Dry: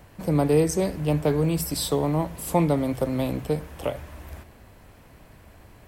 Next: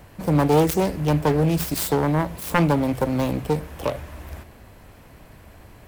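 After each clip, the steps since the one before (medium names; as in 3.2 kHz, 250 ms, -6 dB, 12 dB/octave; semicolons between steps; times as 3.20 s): self-modulated delay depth 0.55 ms; peaking EQ 13 kHz +3 dB 0.29 oct; trim +3.5 dB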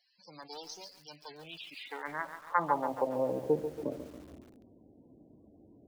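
band-pass sweep 4.9 kHz -> 290 Hz, 1.20–3.80 s; loudest bins only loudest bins 32; bit-crushed delay 140 ms, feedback 55%, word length 8-bit, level -9.5 dB; trim -2 dB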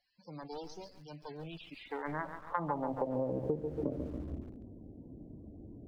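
tilt EQ -4 dB/octave; compression 10:1, threshold -30 dBFS, peak gain reduction 13.5 dB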